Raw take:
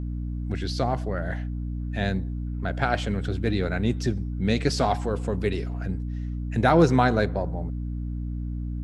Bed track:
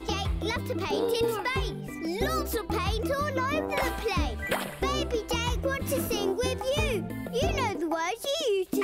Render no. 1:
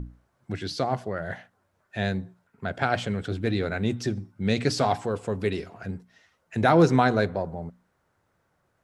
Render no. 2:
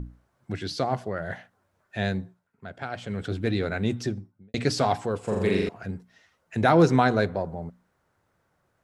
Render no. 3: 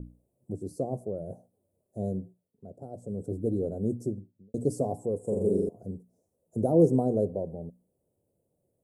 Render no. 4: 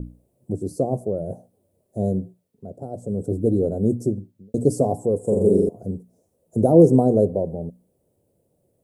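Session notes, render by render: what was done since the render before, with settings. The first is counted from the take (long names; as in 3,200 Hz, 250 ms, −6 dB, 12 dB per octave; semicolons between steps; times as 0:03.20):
mains-hum notches 60/120/180/240/300 Hz
0:02.20–0:03.23: duck −9.5 dB, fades 0.22 s; 0:03.96–0:04.54: fade out and dull; 0:05.21–0:05.69: flutter between parallel walls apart 7.3 metres, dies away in 1.1 s
Chebyshev band-stop filter 540–8,800 Hz, order 3; low-shelf EQ 110 Hz −9.5 dB
level +9 dB; brickwall limiter −3 dBFS, peak gain reduction 2 dB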